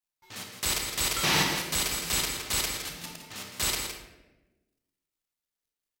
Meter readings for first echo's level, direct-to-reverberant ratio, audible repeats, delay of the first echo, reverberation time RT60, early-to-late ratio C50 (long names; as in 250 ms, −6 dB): −8.0 dB, 1.0 dB, 1, 163 ms, 1.1 s, 3.0 dB